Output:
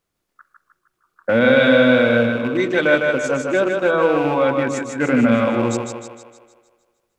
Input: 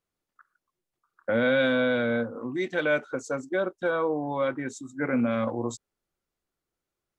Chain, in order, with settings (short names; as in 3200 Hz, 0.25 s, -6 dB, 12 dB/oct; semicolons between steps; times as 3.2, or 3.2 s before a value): rattling part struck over -35 dBFS, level -33 dBFS; split-band echo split 360 Hz, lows 0.102 s, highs 0.154 s, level -4 dB; gain +8.5 dB